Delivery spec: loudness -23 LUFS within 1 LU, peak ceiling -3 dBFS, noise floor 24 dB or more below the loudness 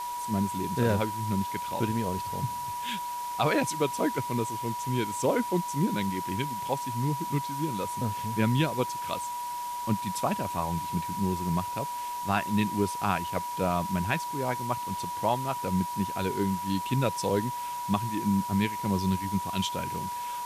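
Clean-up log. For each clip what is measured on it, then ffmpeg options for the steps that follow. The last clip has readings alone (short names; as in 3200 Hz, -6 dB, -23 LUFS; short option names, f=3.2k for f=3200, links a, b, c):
steady tone 970 Hz; tone level -32 dBFS; noise floor -35 dBFS; noise floor target -54 dBFS; loudness -29.5 LUFS; peak -12.5 dBFS; loudness target -23.0 LUFS
-> -af "bandreject=f=970:w=30"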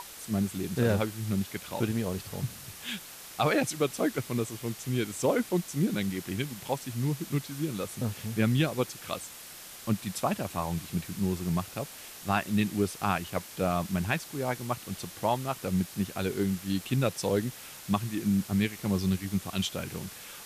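steady tone none; noise floor -46 dBFS; noise floor target -55 dBFS
-> -af "afftdn=nr=9:nf=-46"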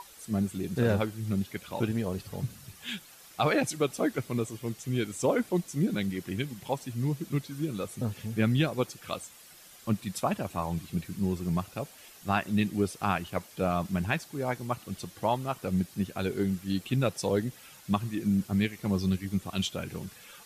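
noise floor -53 dBFS; noise floor target -55 dBFS
-> -af "afftdn=nr=6:nf=-53"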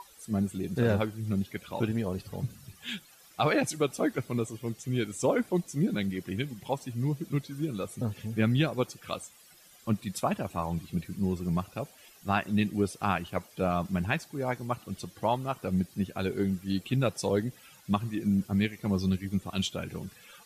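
noise floor -57 dBFS; loudness -31.0 LUFS; peak -13.5 dBFS; loudness target -23.0 LUFS
-> -af "volume=8dB"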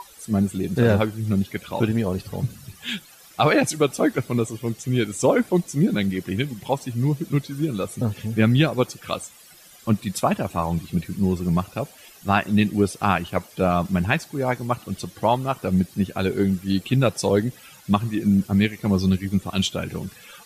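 loudness -23.0 LUFS; peak -5.5 dBFS; noise floor -49 dBFS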